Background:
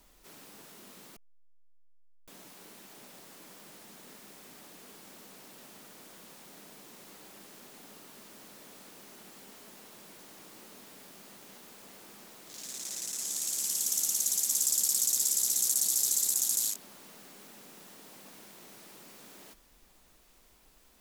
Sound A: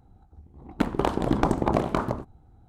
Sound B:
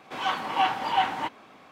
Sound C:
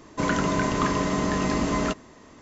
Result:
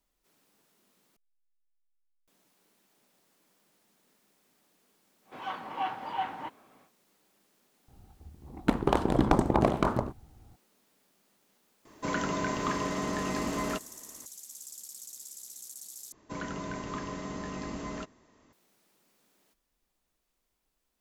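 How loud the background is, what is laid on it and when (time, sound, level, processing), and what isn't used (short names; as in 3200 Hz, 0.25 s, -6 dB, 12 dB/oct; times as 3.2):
background -18 dB
5.21 add B -7.5 dB, fades 0.10 s + high shelf 2400 Hz -10.5 dB
7.88 add A -1 dB
11.85 add C -6 dB + low shelf 170 Hz -6.5 dB
16.12 replace with C -13.5 dB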